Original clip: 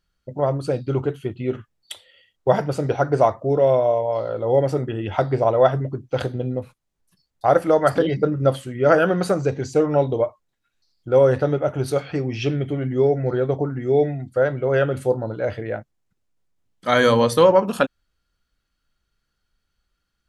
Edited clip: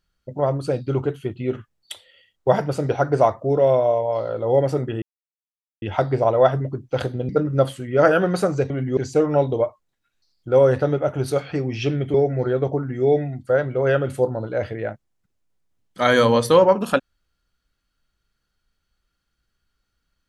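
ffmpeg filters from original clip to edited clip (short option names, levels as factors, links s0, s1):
-filter_complex "[0:a]asplit=6[s0][s1][s2][s3][s4][s5];[s0]atrim=end=5.02,asetpts=PTS-STARTPTS,afade=t=out:st=5.016:d=0.004:c=hsin,apad=pad_dur=0.8[s6];[s1]atrim=start=5.02:end=6.492,asetpts=PTS-STARTPTS,afade=t=in:d=0.004:c=hsin[s7];[s2]atrim=start=8.158:end=9.572[s8];[s3]atrim=start=12.738:end=13.012[s9];[s4]atrim=start=9.568:end=12.742[s10];[s5]atrim=start=13.008[s11];[s6][s7]concat=n=2:v=0:a=1[s12];[s12][s8]acrossfade=d=0.004:c1=hsin:c2=hsin[s13];[s13][s9]acrossfade=d=0.004:c1=hsin:c2=hsin[s14];[s14][s10]acrossfade=d=0.004:c1=hsin:c2=hsin[s15];[s15][s11]acrossfade=d=0.004:c1=hsin:c2=hsin"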